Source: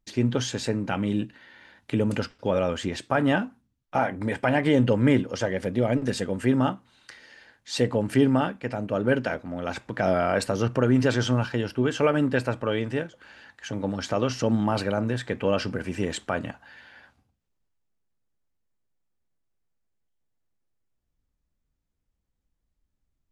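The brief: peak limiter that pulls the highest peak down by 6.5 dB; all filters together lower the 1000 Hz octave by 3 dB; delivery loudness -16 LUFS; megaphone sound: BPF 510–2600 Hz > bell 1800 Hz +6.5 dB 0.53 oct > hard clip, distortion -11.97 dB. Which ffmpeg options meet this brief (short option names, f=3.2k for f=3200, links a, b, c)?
-af "equalizer=f=1k:t=o:g=-4.5,alimiter=limit=-15.5dB:level=0:latency=1,highpass=510,lowpass=2.6k,equalizer=f=1.8k:t=o:w=0.53:g=6.5,asoftclip=type=hard:threshold=-26.5dB,volume=18.5dB"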